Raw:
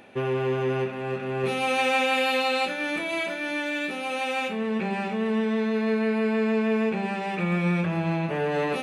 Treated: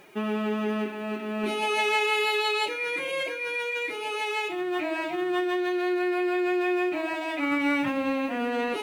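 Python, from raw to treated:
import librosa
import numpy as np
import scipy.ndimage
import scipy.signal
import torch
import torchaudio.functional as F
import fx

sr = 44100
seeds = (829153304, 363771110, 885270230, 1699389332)

y = fx.peak_eq(x, sr, hz=440.0, db=-3.0, octaves=1.7)
y = fx.quant_dither(y, sr, seeds[0], bits=10, dither='none')
y = fx.pitch_keep_formants(y, sr, semitones=8.5)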